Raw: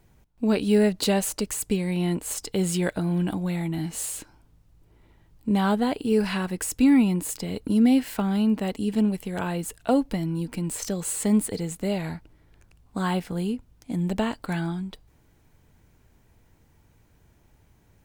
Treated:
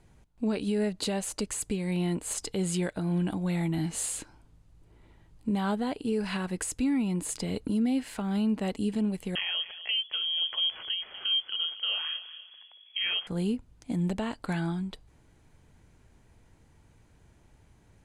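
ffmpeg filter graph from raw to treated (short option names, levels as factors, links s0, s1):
-filter_complex "[0:a]asettb=1/sr,asplit=3[s0][s1][s2];[s0]atrim=end=9.354[s3];[s1]atrim=start=9.35:end=13.27,asetpts=PTS-STARTPTS,afade=t=in:d=0.004:c=qsin,afade=t=out:st=3.916:d=0.004:c=qsin,asplit=2[s4][s5];[s5]adelay=242,lowpass=f=2600:p=1,volume=0.158,asplit=2[s6][s7];[s7]adelay=242,lowpass=f=2600:p=1,volume=0.33,asplit=2[s8][s9];[s9]adelay=242,lowpass=f=2600:p=1,volume=0.33[s10];[s4][s6][s8][s10]amix=inputs=4:normalize=0,atrim=end_sample=172872,lowpass=f=2900:t=q:w=0.5098,lowpass=f=2900:t=q:w=0.6013,lowpass=f=2900:t=q:w=0.9,lowpass=f=2900:t=q:w=2.563,afreqshift=-3400[s11];[s2]atrim=start=13.266[s12];[s3][s11]acrossfade=d=0.004:c1=hsin:c2=qsin[s13];[s13][s12]acrossfade=d=0.004:c1=qsin:c2=hsin,lowpass=f=11000:w=0.5412,lowpass=f=11000:w=1.3066,bandreject=f=5500:w=18,alimiter=limit=0.0944:level=0:latency=1:release=392"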